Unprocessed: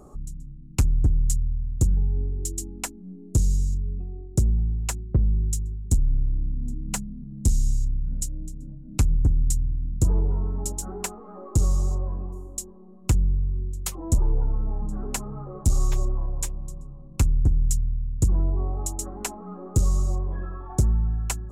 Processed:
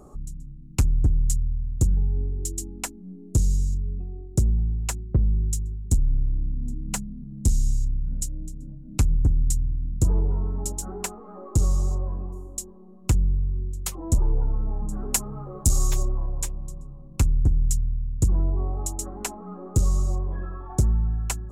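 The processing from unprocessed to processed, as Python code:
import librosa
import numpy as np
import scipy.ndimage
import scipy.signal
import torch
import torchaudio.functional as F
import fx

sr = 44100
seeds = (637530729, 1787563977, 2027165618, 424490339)

y = fx.high_shelf(x, sr, hz=4500.0, db=10.5, at=(14.87, 16.03))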